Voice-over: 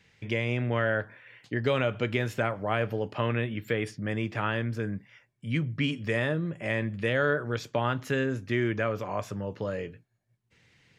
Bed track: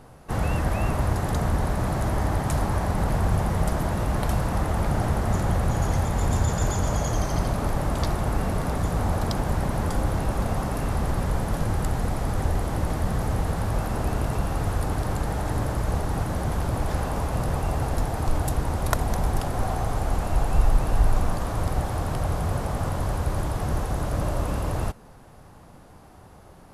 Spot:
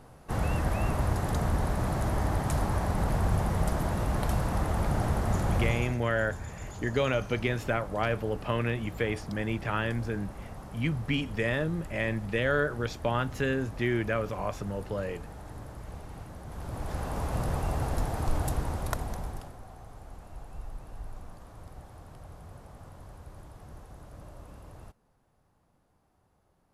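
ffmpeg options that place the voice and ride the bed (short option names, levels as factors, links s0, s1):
-filter_complex "[0:a]adelay=5300,volume=0.891[s0];[1:a]volume=2.66,afade=t=out:st=5.63:d=0.34:silence=0.223872,afade=t=in:st=16.46:d=0.88:silence=0.237137,afade=t=out:st=18.48:d=1.11:silence=0.141254[s1];[s0][s1]amix=inputs=2:normalize=0"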